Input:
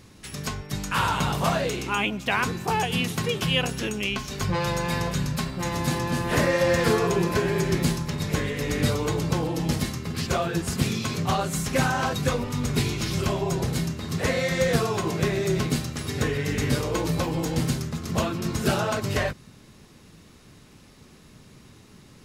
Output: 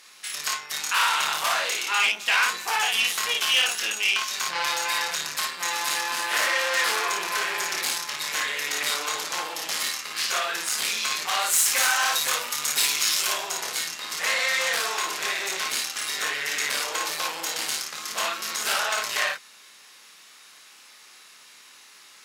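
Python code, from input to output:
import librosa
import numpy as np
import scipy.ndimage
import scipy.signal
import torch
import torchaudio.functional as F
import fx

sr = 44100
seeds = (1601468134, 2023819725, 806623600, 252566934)

y = fx.high_shelf(x, sr, hz=6100.0, db=9.5, at=(11.37, 13.43))
y = fx.room_early_taps(y, sr, ms=(27, 55), db=(-4.0, -3.0))
y = fx.tube_stage(y, sr, drive_db=21.0, bias=0.55)
y = scipy.signal.sosfilt(scipy.signal.butter(2, 1300.0, 'highpass', fs=sr, output='sos'), y)
y = F.gain(torch.from_numpy(y), 8.0).numpy()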